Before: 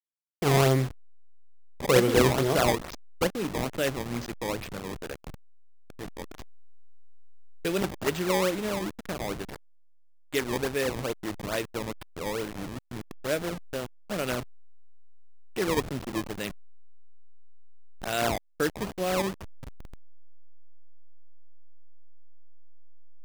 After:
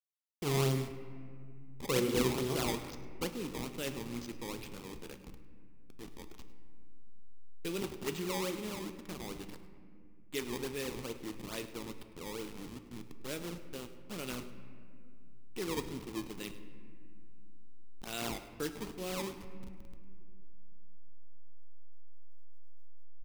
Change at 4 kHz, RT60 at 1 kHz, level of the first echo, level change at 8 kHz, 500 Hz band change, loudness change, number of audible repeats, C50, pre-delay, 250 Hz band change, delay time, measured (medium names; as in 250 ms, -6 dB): -7.5 dB, 2.0 s, -17.5 dB, -7.0 dB, -11.0 dB, -9.5 dB, 1, 10.0 dB, 7 ms, -7.5 dB, 104 ms